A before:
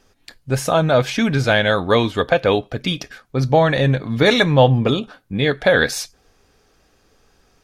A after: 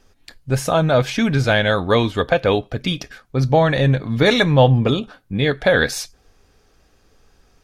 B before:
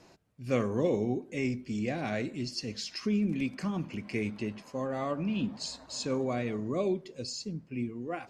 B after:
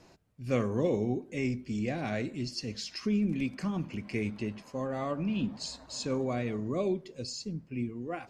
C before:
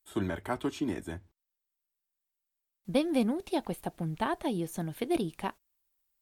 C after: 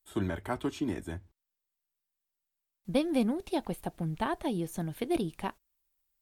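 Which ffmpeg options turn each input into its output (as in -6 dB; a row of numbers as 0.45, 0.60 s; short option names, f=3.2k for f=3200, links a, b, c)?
-af "lowshelf=f=93:g=7,volume=-1dB"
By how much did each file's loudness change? -0.5, 0.0, -0.5 LU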